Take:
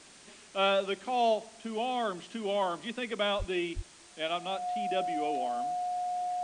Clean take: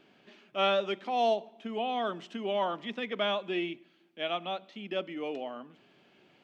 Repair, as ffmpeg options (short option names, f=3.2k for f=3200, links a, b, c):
-filter_complex "[0:a]bandreject=f=720:w=30,asplit=3[a][b][c];[a]afade=t=out:st=3.38:d=0.02[d];[b]highpass=f=140:w=0.5412,highpass=f=140:w=1.3066,afade=t=in:st=3.38:d=0.02,afade=t=out:st=3.5:d=0.02[e];[c]afade=t=in:st=3.5:d=0.02[f];[d][e][f]amix=inputs=3:normalize=0,asplit=3[g][h][i];[g]afade=t=out:st=3.75:d=0.02[j];[h]highpass=f=140:w=0.5412,highpass=f=140:w=1.3066,afade=t=in:st=3.75:d=0.02,afade=t=out:st=3.87:d=0.02[k];[i]afade=t=in:st=3.87:d=0.02[l];[j][k][l]amix=inputs=3:normalize=0,afwtdn=0.0025"